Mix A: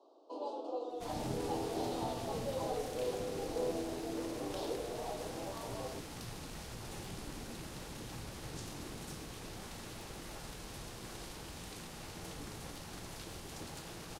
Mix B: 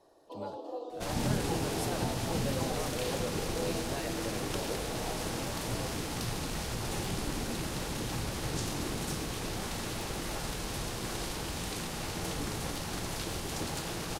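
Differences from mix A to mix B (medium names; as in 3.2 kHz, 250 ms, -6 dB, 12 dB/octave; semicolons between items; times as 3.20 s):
speech: unmuted; second sound +10.5 dB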